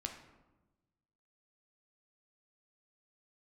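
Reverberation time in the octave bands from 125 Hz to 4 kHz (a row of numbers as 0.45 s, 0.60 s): 1.7 s, 1.4 s, 1.2 s, 1.0 s, 0.80 s, 0.60 s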